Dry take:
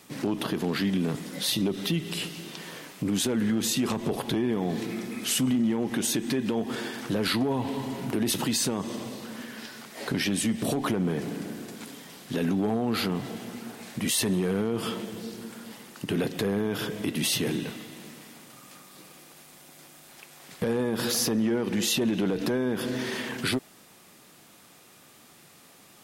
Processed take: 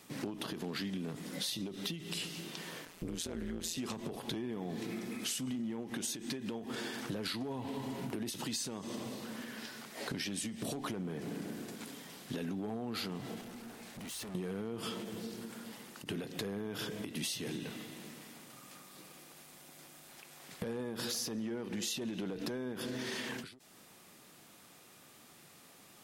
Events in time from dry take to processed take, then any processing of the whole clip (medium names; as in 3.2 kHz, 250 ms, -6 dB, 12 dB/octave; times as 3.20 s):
2.85–3.78 s: AM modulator 170 Hz, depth 85%
13.41–14.35 s: valve stage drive 39 dB, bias 0.45
whole clip: dynamic bell 5.7 kHz, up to +6 dB, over -43 dBFS, Q 0.71; compression, threshold -31 dBFS; endings held to a fixed fall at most 100 dB/s; trim -4.5 dB